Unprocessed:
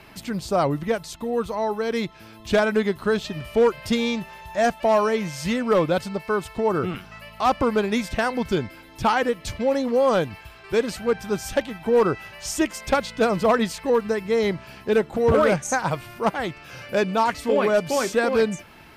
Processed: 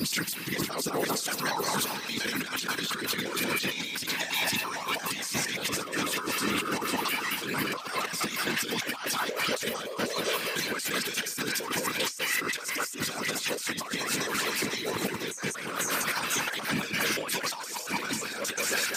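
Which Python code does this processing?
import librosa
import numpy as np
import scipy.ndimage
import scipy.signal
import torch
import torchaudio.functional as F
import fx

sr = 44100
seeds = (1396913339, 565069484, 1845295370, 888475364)

y = fx.block_reorder(x, sr, ms=116.0, group=4)
y = fx.tilt_eq(y, sr, slope=3.5)
y = y + 0.86 * np.pad(y, (int(5.6 * sr / 1000.0), 0))[:len(y)]
y = fx.whisperise(y, sr, seeds[0])
y = scipy.signal.sosfilt(scipy.signal.butter(2, 180.0, 'highpass', fs=sr, output='sos'), y)
y = fx.peak_eq(y, sr, hz=680.0, db=-10.5, octaves=1.1)
y = fx.echo_split(y, sr, split_hz=1600.0, low_ms=196, high_ms=495, feedback_pct=52, wet_db=-11.0)
y = fx.over_compress(y, sr, threshold_db=-32.0, ratio=-1.0)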